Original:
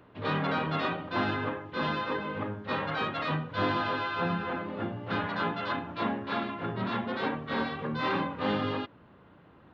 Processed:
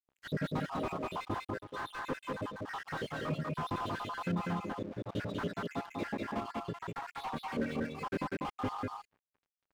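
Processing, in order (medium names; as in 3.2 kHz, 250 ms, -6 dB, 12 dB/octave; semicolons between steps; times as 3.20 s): random holes in the spectrogram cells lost 73%; 3.18–3.61 s: peaking EQ 4.4 kHz -8 dB 2.3 oct; crossover distortion -51.5 dBFS; on a send: delay 195 ms -3 dB; on the sum: slew-rate limiter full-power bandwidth 18 Hz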